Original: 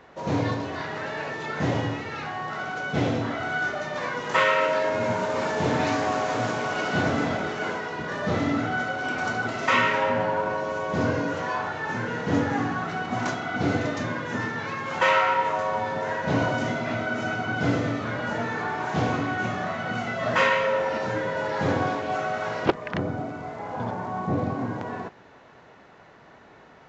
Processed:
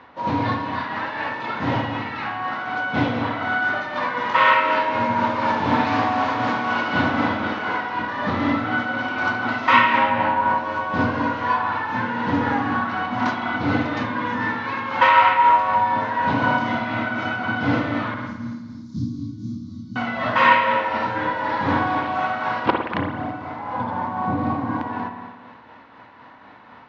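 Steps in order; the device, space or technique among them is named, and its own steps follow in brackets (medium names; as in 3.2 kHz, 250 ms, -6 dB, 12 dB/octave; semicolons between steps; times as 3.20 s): 18.14–19.96 s: inverse Chebyshev band-stop 470–2900 Hz, stop band 40 dB; combo amplifier with spring reverb and tremolo (spring tank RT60 1.3 s, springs 55 ms, chirp 25 ms, DRR 3.5 dB; tremolo 4 Hz, depth 33%; cabinet simulation 79–4500 Hz, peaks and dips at 160 Hz -9 dB, 260 Hz +4 dB, 400 Hz -10 dB, 650 Hz -5 dB, 980 Hz +7 dB); trim +4.5 dB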